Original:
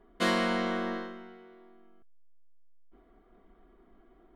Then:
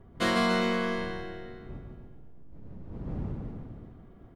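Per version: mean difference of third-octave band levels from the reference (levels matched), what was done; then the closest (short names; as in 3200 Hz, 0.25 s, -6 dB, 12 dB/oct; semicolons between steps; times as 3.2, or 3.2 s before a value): 7.5 dB: wind noise 180 Hz -44 dBFS; bouncing-ball echo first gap 0.15 s, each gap 0.9×, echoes 5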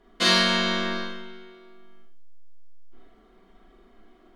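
3.5 dB: bell 4700 Hz +12.5 dB 2.1 oct; Schroeder reverb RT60 0.47 s, combs from 29 ms, DRR -2 dB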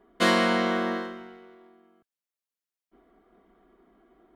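2.0 dB: HPF 130 Hz 6 dB/oct; in parallel at -4 dB: crossover distortion -52 dBFS; on the sum: gain +2 dB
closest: third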